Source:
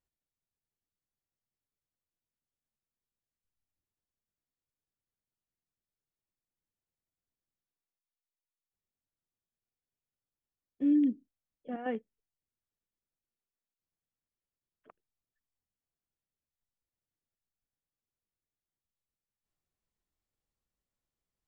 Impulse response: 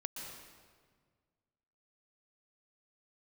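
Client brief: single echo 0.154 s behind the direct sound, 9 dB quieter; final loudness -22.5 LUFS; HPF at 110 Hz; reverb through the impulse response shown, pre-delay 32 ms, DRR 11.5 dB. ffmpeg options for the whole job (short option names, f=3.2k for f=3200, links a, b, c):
-filter_complex "[0:a]highpass=110,aecho=1:1:154:0.355,asplit=2[a][b];[1:a]atrim=start_sample=2205,adelay=32[c];[b][c]afir=irnorm=-1:irlink=0,volume=-11dB[d];[a][d]amix=inputs=2:normalize=0,volume=8.5dB"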